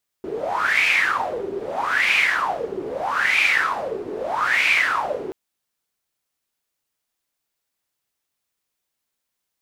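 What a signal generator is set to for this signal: wind-like swept noise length 5.08 s, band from 380 Hz, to 2400 Hz, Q 9.8, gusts 4, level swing 11 dB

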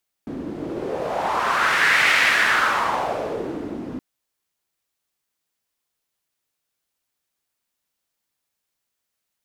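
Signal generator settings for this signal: wind-like swept noise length 3.72 s, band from 270 Hz, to 2000 Hz, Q 3, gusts 1, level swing 14 dB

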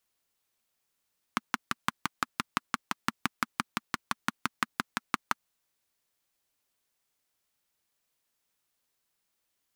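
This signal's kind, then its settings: single-cylinder engine model, steady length 3.99 s, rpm 700, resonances 230/1200 Hz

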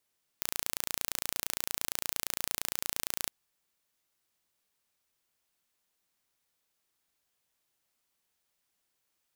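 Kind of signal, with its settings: pulse train 28.7/s, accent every 0, -4.5 dBFS 2.86 s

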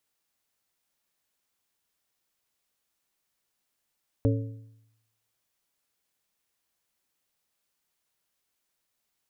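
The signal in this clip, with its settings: metal hit plate, lowest mode 111 Hz, modes 4, decay 0.86 s, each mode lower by 3.5 dB, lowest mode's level -19.5 dB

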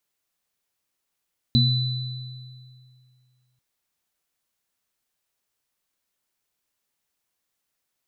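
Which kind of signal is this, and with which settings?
sine partials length 2.04 s, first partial 126 Hz, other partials 235/3990 Hz, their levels -1/-3 dB, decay 2.31 s, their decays 0.41/1.88 s, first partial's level -16 dB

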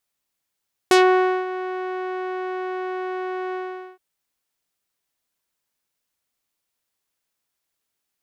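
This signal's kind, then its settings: synth note saw F#4 12 dB/oct, low-pass 1600 Hz, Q 0.94, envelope 3 oct, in 0.13 s, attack 1.1 ms, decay 0.54 s, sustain -15 dB, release 0.44 s, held 2.63 s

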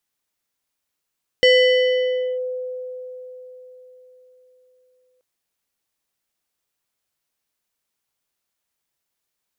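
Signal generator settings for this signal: FM tone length 3.78 s, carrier 506 Hz, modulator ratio 4.94, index 0.95, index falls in 0.96 s linear, decay 4.29 s, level -9 dB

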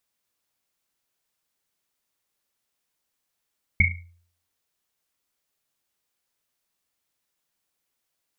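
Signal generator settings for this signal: Risset drum, pitch 86 Hz, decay 0.56 s, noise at 2200 Hz, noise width 150 Hz, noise 55%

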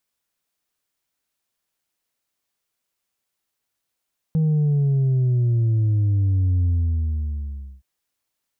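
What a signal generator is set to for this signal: sub drop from 160 Hz, over 3.47 s, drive 2.5 dB, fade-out 1.17 s, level -16.5 dB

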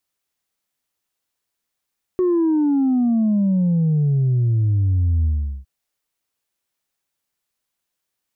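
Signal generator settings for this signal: sub drop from 370 Hz, over 3.46 s, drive 1 dB, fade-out 0.40 s, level -15 dB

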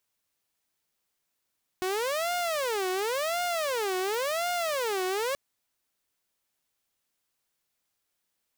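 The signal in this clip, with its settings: siren wail 368–710 Hz 0.93/s saw -24.5 dBFS 3.53 s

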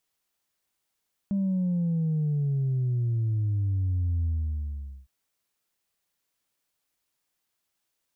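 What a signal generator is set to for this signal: sub drop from 200 Hz, over 3.76 s, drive 0.5 dB, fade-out 0.82 s, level -23.5 dB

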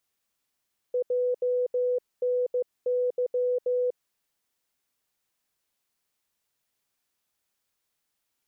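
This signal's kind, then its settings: Morse "JNY" 15 wpm 496 Hz -22.5 dBFS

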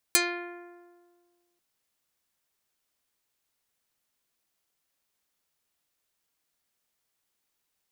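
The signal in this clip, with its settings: plucked string F4, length 1.44 s, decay 1.73 s, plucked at 0.37, dark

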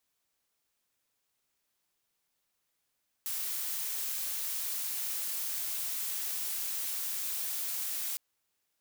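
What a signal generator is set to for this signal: noise blue, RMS -35 dBFS 4.91 s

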